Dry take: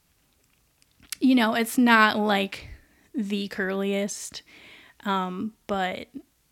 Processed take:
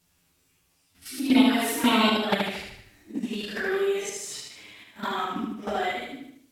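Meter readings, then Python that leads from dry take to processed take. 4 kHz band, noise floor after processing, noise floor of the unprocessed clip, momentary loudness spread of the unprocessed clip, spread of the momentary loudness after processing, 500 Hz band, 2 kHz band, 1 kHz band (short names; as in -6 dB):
+2.0 dB, -68 dBFS, -67 dBFS, 19 LU, 19 LU, 0.0 dB, -5.0 dB, -3.0 dB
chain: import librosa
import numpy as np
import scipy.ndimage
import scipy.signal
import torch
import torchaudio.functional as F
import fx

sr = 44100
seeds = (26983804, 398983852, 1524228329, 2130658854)

y = fx.phase_scramble(x, sr, seeds[0], window_ms=200)
y = fx.high_shelf(y, sr, hz=2500.0, db=3.0)
y = fx.level_steps(y, sr, step_db=10)
y = fx.env_flanger(y, sr, rest_ms=11.5, full_db=-19.0)
y = fx.echo_feedback(y, sr, ms=76, feedback_pct=48, wet_db=-4)
y = F.gain(torch.from_numpy(y), 4.0).numpy()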